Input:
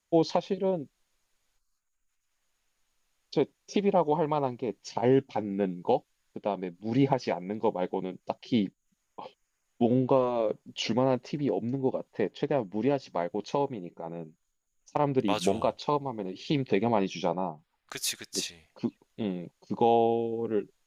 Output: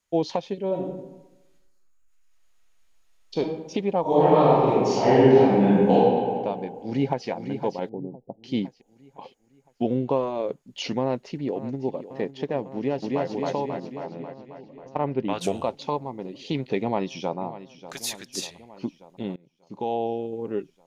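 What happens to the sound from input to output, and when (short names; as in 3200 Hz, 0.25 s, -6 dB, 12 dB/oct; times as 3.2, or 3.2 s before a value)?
0.67–3.39 reverb throw, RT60 1 s, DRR -2 dB
4.01–5.93 reverb throw, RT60 2 s, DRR -11 dB
6.75–7.28 echo throw 0.51 s, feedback 45%, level -8 dB
7.89–8.44 Gaussian blur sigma 14 samples
11–12.05 echo throw 0.55 s, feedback 85%, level -14 dB
12.75–13.25 echo throw 0.27 s, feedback 65%, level -0.5 dB
14.06–15.4 LPF 5300 Hz -> 2600 Hz
16.8–17.39 echo throw 0.59 s, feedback 65%, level -14.5 dB
19.36–20.33 fade in, from -24 dB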